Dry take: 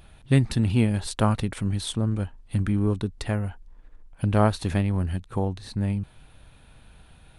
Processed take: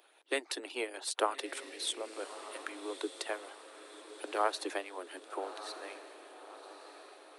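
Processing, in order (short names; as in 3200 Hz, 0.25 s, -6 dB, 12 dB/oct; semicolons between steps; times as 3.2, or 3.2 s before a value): steep high-pass 300 Hz 96 dB/oct; harmonic-percussive split harmonic -14 dB; diffused feedback echo 1.205 s, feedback 53%, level -12 dB; gain -2 dB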